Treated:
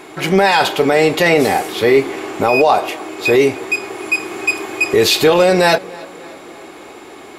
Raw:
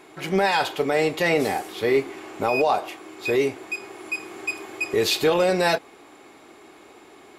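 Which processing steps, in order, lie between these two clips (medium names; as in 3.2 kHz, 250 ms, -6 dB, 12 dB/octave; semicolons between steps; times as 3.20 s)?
in parallel at +2.5 dB: peak limiter -18.5 dBFS, peak gain reduction 9 dB; on the sum: tape echo 296 ms, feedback 63%, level -21 dB, low-pass 4.8 kHz; trim +4.5 dB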